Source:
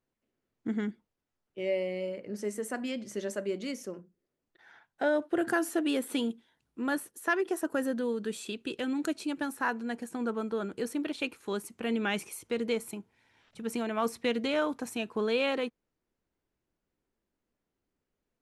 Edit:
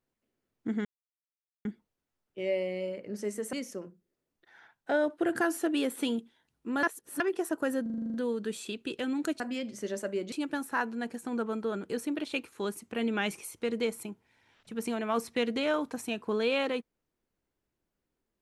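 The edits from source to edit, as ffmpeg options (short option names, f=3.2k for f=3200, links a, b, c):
-filter_complex "[0:a]asplit=15[a][b][c][d][e][f][g][h][i][j][k][l][m][n][o];[a]atrim=end=0.85,asetpts=PTS-STARTPTS,afade=t=out:st=0.846:d=0.004:c=hsin,apad=pad_dur=0.8[p];[b]atrim=start=0.85:end=2.732,asetpts=PTS-STARTPTS,afade=t=in:d=0.004:c=hsin[q];[c]atrim=start=3.648:end=6.952[r];[d]atrim=start=6.948:end=7.322,asetpts=PTS-STARTPTS,areverse[s];[e]atrim=start=7.318:end=7.982[t];[f]atrim=start=7.938:end=7.982[u];[g]atrim=start=7.938:end=7.982[v];[h]atrim=start=7.938:end=7.982[w];[i]atrim=start=7.938:end=7.982[x];[j]atrim=start=7.938:end=7.982[y];[k]atrim=start=7.938:end=7.982[z];[l]atrim=start=7.938:end=7.982[aa];[m]atrim=start=7.938:end=9.202[ab];[n]atrim=start=2.728:end=3.652[ac];[o]atrim=start=9.198[ad];[p][q]concat=n=2:v=0:a=1[ae];[ae][r]acrossfade=d=0.004:c1=hsin:c2=hsin[af];[af][s]acrossfade=d=0.004:c1=hsin:c2=hsin[ag];[ag][t]acrossfade=d=0.004:c1=hsin:c2=hsin[ah];[ah][u]acrossfade=d=0.004:c1=hsin:c2=hsin[ai];[ai][v]acrossfade=d=0.004:c1=hsin:c2=hsin[aj];[aj][w]acrossfade=d=0.004:c1=hsin:c2=hsin[ak];[ak][x]acrossfade=d=0.004:c1=hsin:c2=hsin[al];[al][y]acrossfade=d=0.004:c1=hsin:c2=hsin[am];[am][z]acrossfade=d=0.004:c1=hsin:c2=hsin[an];[an][aa]acrossfade=d=0.004:c1=hsin:c2=hsin[ao];[ao][ab]acrossfade=d=0.004:c1=hsin:c2=hsin[ap];[ap][ac]acrossfade=d=0.004:c1=hsin:c2=hsin[aq];[aq][ad]acrossfade=d=0.004:c1=hsin:c2=hsin"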